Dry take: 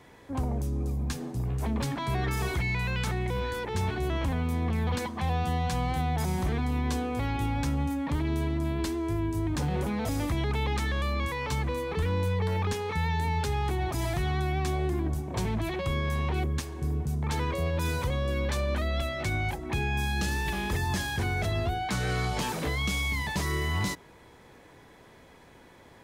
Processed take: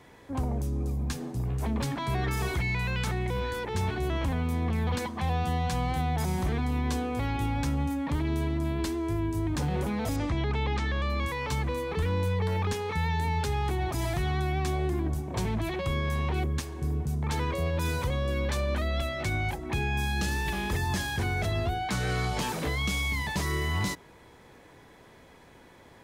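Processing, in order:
0:10.16–0:11.10: Bessel low-pass filter 4,900 Hz, order 4

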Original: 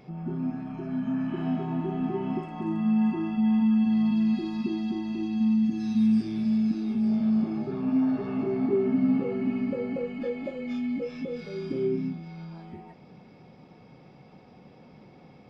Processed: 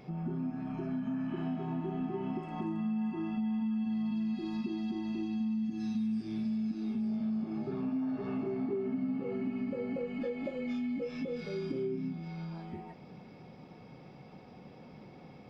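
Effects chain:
downward compressor 4 to 1, threshold −33 dBFS, peak gain reduction 11.5 dB

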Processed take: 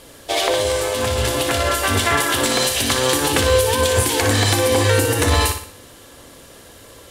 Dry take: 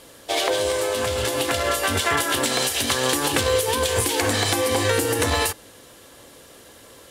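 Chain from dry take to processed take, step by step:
low-shelf EQ 91 Hz +9 dB
flutter between parallel walls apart 10.3 metres, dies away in 0.49 s
level +2.5 dB

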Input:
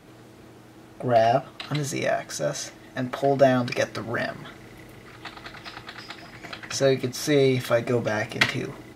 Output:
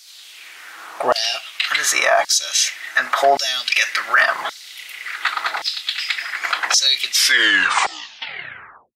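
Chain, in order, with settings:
turntable brake at the end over 1.87 s
auto-filter high-pass saw down 0.89 Hz 790–5,000 Hz
boost into a limiter +19.5 dB
level −4 dB

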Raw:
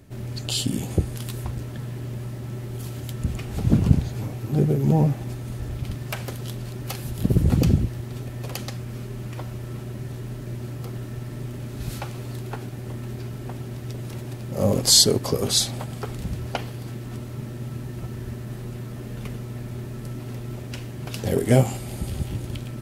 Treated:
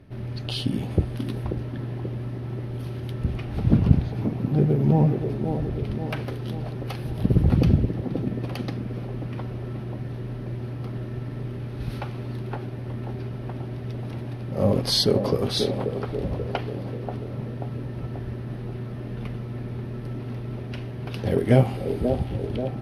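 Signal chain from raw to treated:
moving average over 6 samples
delay with a band-pass on its return 535 ms, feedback 56%, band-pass 420 Hz, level −4 dB

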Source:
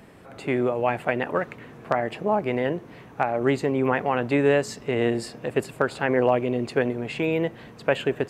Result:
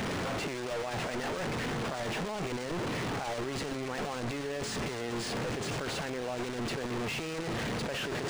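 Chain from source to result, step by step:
linear delta modulator 64 kbit/s, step −16.5 dBFS
output level in coarse steps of 13 dB
bit-depth reduction 6 bits, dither none
linearly interpolated sample-rate reduction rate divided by 3×
level −9 dB

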